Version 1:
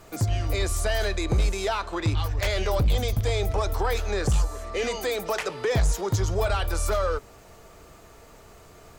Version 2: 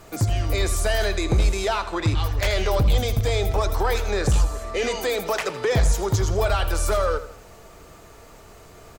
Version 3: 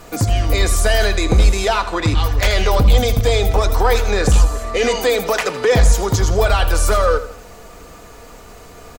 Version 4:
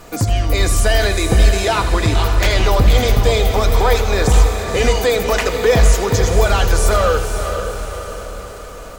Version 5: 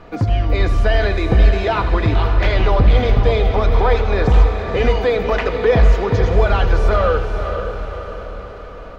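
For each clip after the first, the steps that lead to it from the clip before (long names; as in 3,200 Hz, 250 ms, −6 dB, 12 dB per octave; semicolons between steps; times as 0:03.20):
repeating echo 82 ms, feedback 41%, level −13 dB; level +3 dB
comb filter 4.1 ms, depth 34%; level +6.5 dB
feedback delay with all-pass diffusion 505 ms, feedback 54%, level −7 dB
high-frequency loss of the air 300 metres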